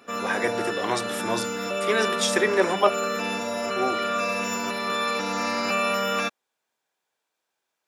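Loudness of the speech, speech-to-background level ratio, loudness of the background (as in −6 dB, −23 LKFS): −26.0 LKFS, 1.0 dB, −27.0 LKFS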